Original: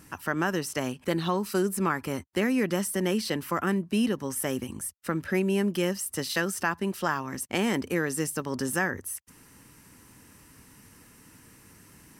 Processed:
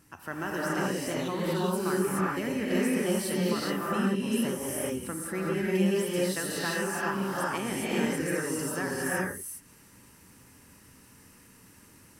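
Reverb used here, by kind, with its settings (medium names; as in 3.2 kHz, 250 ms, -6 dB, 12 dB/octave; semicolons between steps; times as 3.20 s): gated-style reverb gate 440 ms rising, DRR -6.5 dB; trim -8.5 dB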